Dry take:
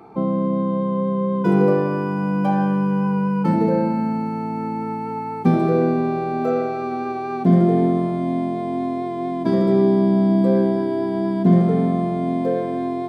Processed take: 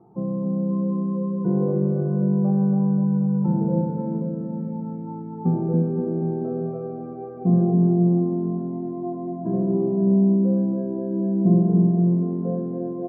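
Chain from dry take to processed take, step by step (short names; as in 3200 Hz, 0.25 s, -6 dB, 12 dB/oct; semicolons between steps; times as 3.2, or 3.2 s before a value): Bessel low-pass 650 Hz, order 4; bell 120 Hz +8.5 dB 0.84 oct; comb 5.6 ms, depth 40%; on a send: bouncing-ball echo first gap 0.28 s, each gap 0.9×, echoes 5; on the sum: gain -8.5 dB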